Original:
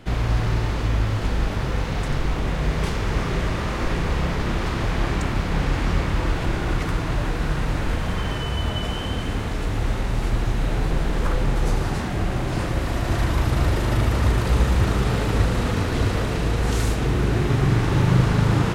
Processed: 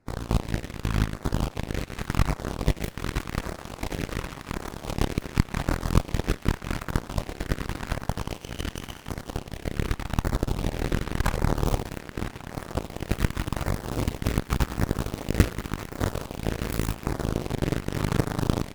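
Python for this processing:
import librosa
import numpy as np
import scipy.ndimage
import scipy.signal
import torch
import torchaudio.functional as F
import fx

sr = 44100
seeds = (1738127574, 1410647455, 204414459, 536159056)

p1 = fx.tracing_dist(x, sr, depth_ms=0.39)
p2 = fx.rider(p1, sr, range_db=4, speed_s=0.5)
p3 = p1 + (p2 * librosa.db_to_amplitude(2.0))
p4 = fx.filter_lfo_notch(p3, sr, shape='saw_down', hz=0.88, low_hz=350.0, high_hz=3300.0, q=1.4)
p5 = fx.chorus_voices(p4, sr, voices=4, hz=0.11, base_ms=21, depth_ms=2.1, mix_pct=20)
p6 = fx.cheby_harmonics(p5, sr, harmonics=(2, 3), levels_db=(-18, -9), full_scale_db=-2.5)
y = p6 * librosa.db_to_amplitude(-2.0)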